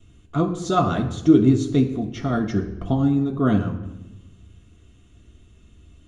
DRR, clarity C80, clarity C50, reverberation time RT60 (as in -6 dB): -1.5 dB, 11.5 dB, 9.0 dB, 1.1 s